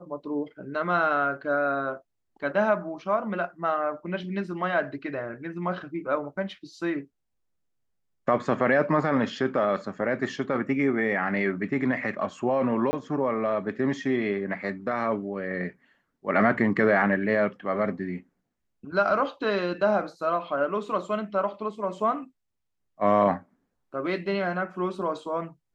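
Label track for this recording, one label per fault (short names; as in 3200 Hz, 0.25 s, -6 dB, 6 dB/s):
12.910000	12.930000	gap 20 ms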